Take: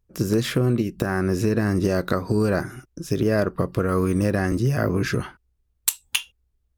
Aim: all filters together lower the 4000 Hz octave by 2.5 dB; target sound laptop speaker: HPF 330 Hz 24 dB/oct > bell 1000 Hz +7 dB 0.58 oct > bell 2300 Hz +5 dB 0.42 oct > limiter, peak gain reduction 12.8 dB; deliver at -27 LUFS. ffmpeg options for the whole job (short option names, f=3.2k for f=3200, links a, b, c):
-af "highpass=f=330:w=0.5412,highpass=f=330:w=1.3066,equalizer=f=1k:t=o:w=0.58:g=7,equalizer=f=2.3k:t=o:w=0.42:g=5,equalizer=f=4k:t=o:g=-5,volume=1.5dB,alimiter=limit=-15dB:level=0:latency=1"